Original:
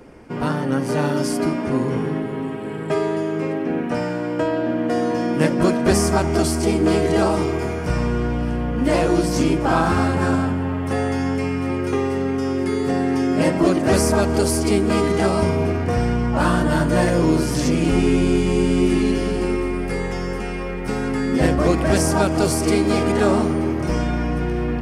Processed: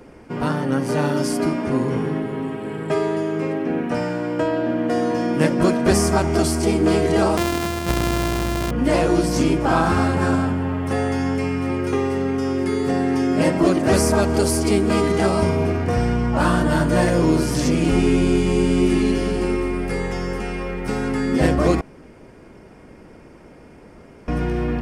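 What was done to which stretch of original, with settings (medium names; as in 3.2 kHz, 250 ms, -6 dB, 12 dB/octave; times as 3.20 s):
7.37–8.71 s: sorted samples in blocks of 128 samples
21.81–24.28 s: room tone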